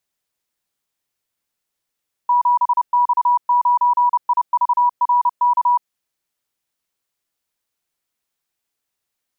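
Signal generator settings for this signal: Morse "7X9IVRK" 30 wpm 974 Hz -11.5 dBFS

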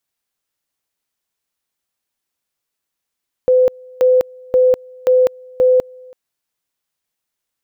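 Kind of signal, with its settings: two-level tone 508 Hz -8 dBFS, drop 27.5 dB, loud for 0.20 s, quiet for 0.33 s, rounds 5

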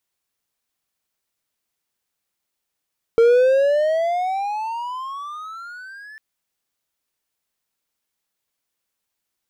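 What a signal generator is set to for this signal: gliding synth tone triangle, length 3.00 s, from 455 Hz, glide +23.5 st, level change -28 dB, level -7.5 dB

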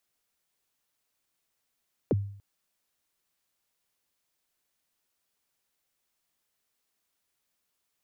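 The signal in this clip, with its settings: kick drum length 0.29 s, from 570 Hz, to 100 Hz, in 29 ms, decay 0.58 s, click off, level -19 dB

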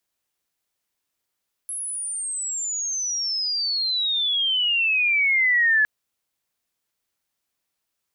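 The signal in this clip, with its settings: chirp logarithmic 11000 Hz -> 1700 Hz -27.5 dBFS -> -15 dBFS 4.16 s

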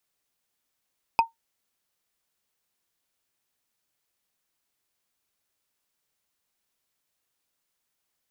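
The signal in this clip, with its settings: wood hit, lowest mode 914 Hz, decay 0.14 s, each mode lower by 7 dB, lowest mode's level -11.5 dB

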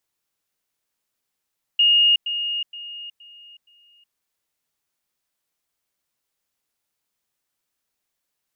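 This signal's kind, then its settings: level ladder 2850 Hz -12.5 dBFS, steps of -10 dB, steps 5, 0.37 s 0.10 s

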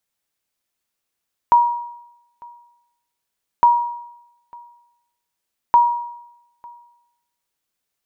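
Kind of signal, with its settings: sonar ping 954 Hz, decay 0.85 s, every 2.11 s, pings 3, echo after 0.90 s, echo -27 dB -6 dBFS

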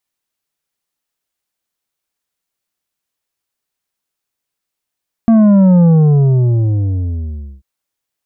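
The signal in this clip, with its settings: sub drop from 230 Hz, over 2.34 s, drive 7.5 dB, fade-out 1.79 s, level -6 dB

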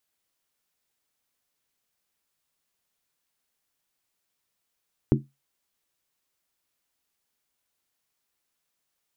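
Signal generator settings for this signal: skin hit, lowest mode 138 Hz, decay 0.22 s, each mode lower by 1.5 dB, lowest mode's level -16 dB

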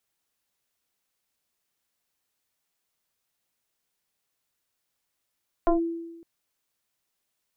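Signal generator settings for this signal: FM tone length 0.56 s, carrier 334 Hz, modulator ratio 1.04, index 1.8, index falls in 0.13 s linear, decay 1.09 s, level -15.5 dB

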